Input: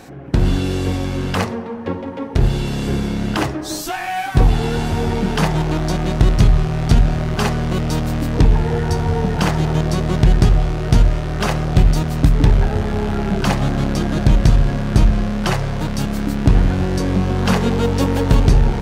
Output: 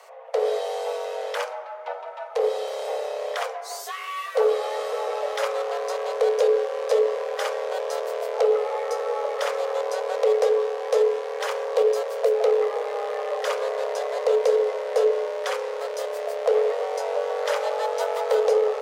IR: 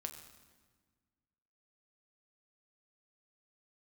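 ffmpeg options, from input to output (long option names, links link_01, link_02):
-af "afreqshift=390,volume=-9dB"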